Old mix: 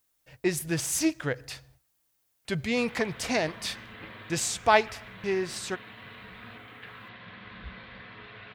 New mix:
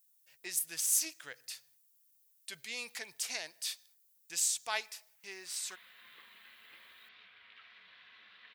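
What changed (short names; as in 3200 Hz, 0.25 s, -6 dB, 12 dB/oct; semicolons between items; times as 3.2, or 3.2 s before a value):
background: entry +2.70 s; master: add differentiator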